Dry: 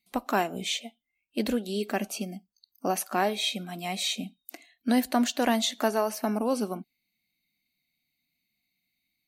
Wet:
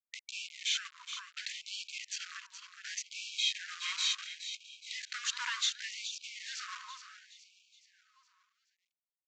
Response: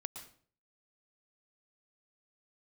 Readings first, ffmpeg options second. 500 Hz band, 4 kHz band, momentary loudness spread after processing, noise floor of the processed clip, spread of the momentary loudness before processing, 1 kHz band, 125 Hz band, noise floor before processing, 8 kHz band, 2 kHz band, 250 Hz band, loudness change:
under -40 dB, -1.0 dB, 13 LU, under -85 dBFS, 12 LU, -18.0 dB, under -40 dB, -81 dBFS, -3.0 dB, -3.5 dB, under -40 dB, -8.0 dB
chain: -filter_complex "[0:a]lowshelf=f=60:g=10,asplit=2[s0][s1];[s1]acompressor=threshold=0.0126:ratio=6,volume=1[s2];[s0][s2]amix=inputs=2:normalize=0,aeval=exprs='val(0)*gte(abs(val(0)),0.0335)':c=same,aecho=1:1:420|840|1260|1680|2100:0.266|0.128|0.0613|0.0294|0.0141,aresample=16000,asoftclip=type=tanh:threshold=0.0944,aresample=44100,afftfilt=real='re*gte(b*sr/1024,930*pow(2300/930,0.5+0.5*sin(2*PI*0.69*pts/sr)))':imag='im*gte(b*sr/1024,930*pow(2300/930,0.5+0.5*sin(2*PI*0.69*pts/sr)))':win_size=1024:overlap=0.75,volume=0.841"

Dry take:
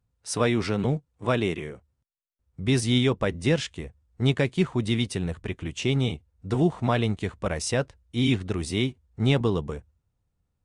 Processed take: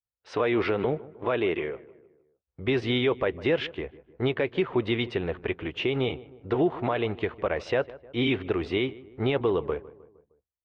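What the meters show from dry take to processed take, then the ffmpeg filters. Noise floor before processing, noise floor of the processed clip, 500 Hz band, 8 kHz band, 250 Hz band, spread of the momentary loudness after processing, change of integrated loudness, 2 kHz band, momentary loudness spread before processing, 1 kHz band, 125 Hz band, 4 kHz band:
-78 dBFS, under -85 dBFS, +2.5 dB, under -20 dB, -3.0 dB, 9 LU, -2.0 dB, +0.5 dB, 10 LU, 0.0 dB, -8.5 dB, -3.0 dB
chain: -filter_complex "[0:a]lowpass=f=3100:w=0.5412,lowpass=f=3100:w=1.3066,agate=range=0.0224:threshold=0.00112:ratio=3:detection=peak,lowshelf=f=280:t=q:w=1.5:g=-9,alimiter=limit=0.106:level=0:latency=1:release=119,asplit=2[s0][s1];[s1]adelay=154,lowpass=f=1500:p=1,volume=0.119,asplit=2[s2][s3];[s3]adelay=154,lowpass=f=1500:p=1,volume=0.53,asplit=2[s4][s5];[s5]adelay=154,lowpass=f=1500:p=1,volume=0.53,asplit=2[s6][s7];[s7]adelay=154,lowpass=f=1500:p=1,volume=0.53[s8];[s2][s4][s6][s8]amix=inputs=4:normalize=0[s9];[s0][s9]amix=inputs=2:normalize=0,volume=1.68"

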